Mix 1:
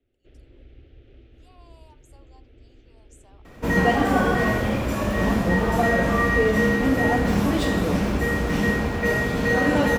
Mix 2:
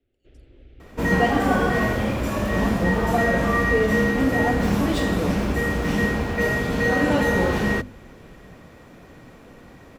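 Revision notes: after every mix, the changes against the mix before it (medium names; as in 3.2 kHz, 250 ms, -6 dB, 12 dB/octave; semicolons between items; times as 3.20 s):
second sound: entry -2.65 s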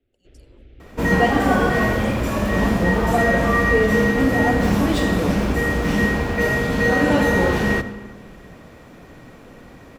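speech +10.5 dB; reverb: on, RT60 1.4 s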